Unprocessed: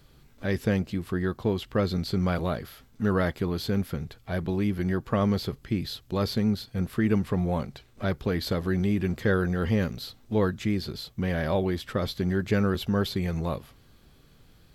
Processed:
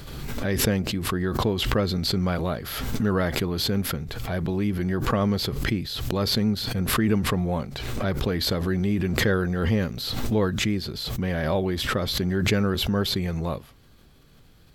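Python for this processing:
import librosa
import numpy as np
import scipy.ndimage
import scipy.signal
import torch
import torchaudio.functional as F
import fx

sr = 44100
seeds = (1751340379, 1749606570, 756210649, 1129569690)

y = fx.pre_swell(x, sr, db_per_s=34.0)
y = F.gain(torch.from_numpy(y), 1.0).numpy()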